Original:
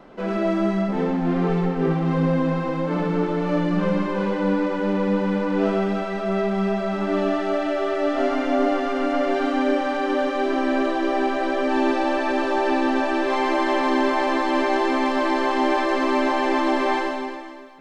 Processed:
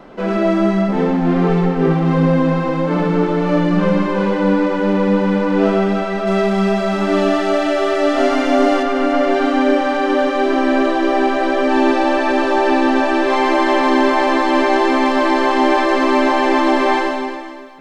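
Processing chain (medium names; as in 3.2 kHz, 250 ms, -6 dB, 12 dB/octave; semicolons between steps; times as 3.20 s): 6.27–8.83 s: treble shelf 3.9 kHz +9 dB; trim +6.5 dB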